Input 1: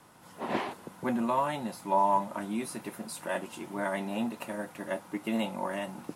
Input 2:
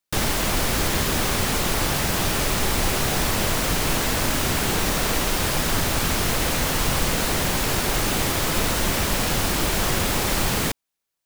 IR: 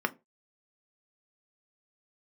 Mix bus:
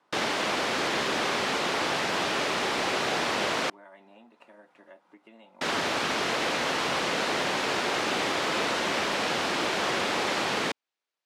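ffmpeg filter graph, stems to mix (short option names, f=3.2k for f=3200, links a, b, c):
-filter_complex "[0:a]acompressor=threshold=-40dB:ratio=3,volume=-9.5dB[a];[1:a]volume=-1dB,asplit=3[b][c][d];[b]atrim=end=3.7,asetpts=PTS-STARTPTS,afade=t=out:st=3.696:d=0.004:c=hsin[e];[c]atrim=start=3.7:end=5.61,asetpts=PTS-STARTPTS,volume=0[f];[d]atrim=start=5.61,asetpts=PTS-STARTPTS,afade=t=in:d=0.004:c=hsin[g];[e][f][g]concat=n=3:v=0:a=1[h];[a][h]amix=inputs=2:normalize=0,highpass=320,lowpass=4.2k"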